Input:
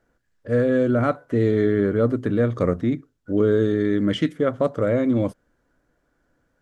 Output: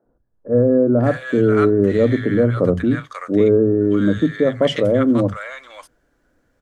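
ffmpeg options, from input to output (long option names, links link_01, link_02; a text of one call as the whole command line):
ffmpeg -i in.wav -filter_complex "[0:a]acrossover=split=150|1000[link_01][link_02][link_03];[link_01]adelay=50[link_04];[link_03]adelay=540[link_05];[link_04][link_02][link_05]amix=inputs=3:normalize=0,volume=5.5dB" out.wav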